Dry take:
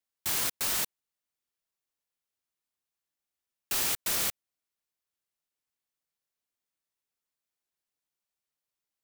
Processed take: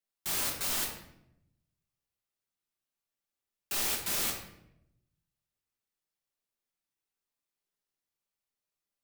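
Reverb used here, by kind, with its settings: shoebox room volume 220 m³, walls mixed, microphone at 1.2 m; gain -5 dB

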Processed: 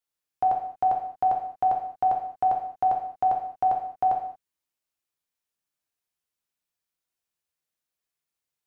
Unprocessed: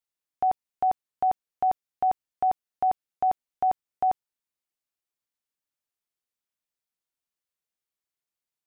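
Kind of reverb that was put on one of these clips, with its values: non-linear reverb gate 0.25 s falling, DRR 0.5 dB

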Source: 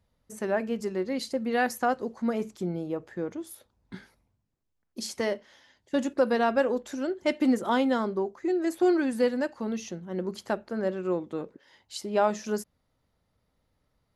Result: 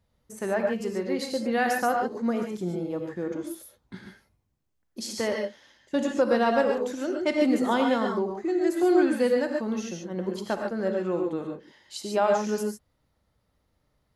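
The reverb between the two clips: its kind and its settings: non-linear reverb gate 0.16 s rising, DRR 2 dB

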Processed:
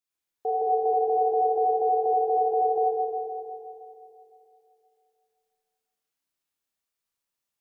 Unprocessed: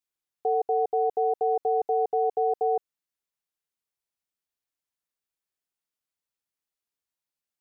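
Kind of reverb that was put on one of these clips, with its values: Schroeder reverb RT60 2.8 s, combs from 27 ms, DRR -6.5 dB; gain -3 dB

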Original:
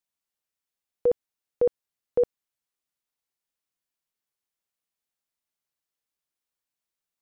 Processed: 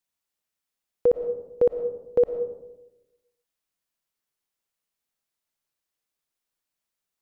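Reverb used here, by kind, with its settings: digital reverb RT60 0.99 s, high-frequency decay 0.3×, pre-delay 70 ms, DRR 9 dB; gain +2.5 dB

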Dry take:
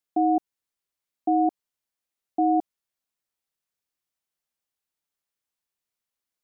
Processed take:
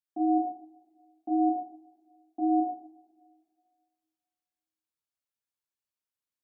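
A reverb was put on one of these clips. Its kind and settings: two-slope reverb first 0.64 s, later 2.1 s, from -20 dB, DRR -5.5 dB; gain -14.5 dB

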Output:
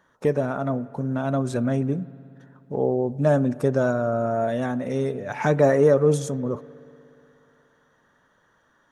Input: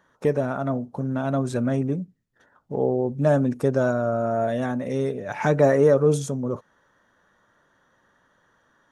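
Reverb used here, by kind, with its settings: spring tank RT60 2.8 s, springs 60 ms, chirp 55 ms, DRR 19 dB

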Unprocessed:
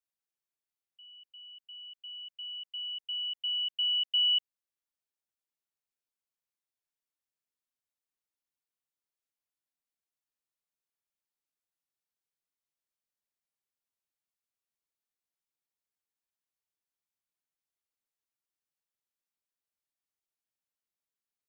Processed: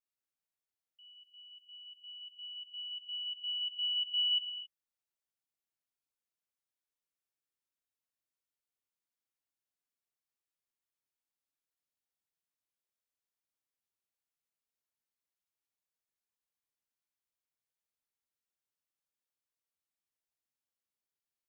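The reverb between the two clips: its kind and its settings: non-linear reverb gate 0.29 s flat, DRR 2 dB; gain -5 dB

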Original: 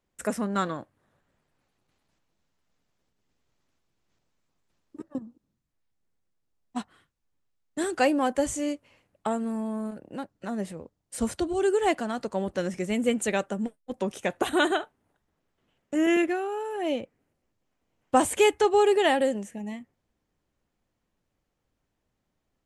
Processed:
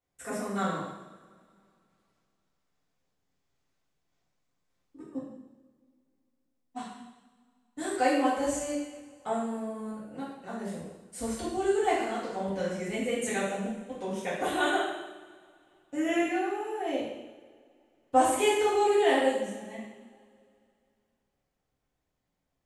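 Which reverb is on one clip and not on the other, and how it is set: two-slope reverb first 0.95 s, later 2.7 s, from -20 dB, DRR -10 dB; gain -12.5 dB

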